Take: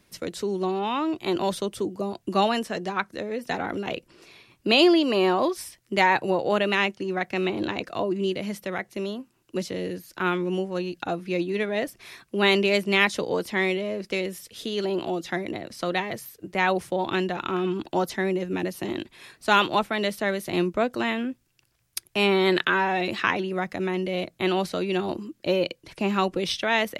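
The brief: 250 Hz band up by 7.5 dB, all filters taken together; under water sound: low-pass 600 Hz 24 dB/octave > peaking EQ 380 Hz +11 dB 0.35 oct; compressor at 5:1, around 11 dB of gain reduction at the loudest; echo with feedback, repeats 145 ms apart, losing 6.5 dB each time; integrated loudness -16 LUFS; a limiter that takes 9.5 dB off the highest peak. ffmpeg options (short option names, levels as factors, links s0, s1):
-af "equalizer=f=250:t=o:g=3,acompressor=threshold=0.0562:ratio=5,alimiter=limit=0.0841:level=0:latency=1,lowpass=f=600:w=0.5412,lowpass=f=600:w=1.3066,equalizer=f=380:t=o:w=0.35:g=11,aecho=1:1:145|290|435|580|725|870:0.473|0.222|0.105|0.0491|0.0231|0.0109,volume=2.82"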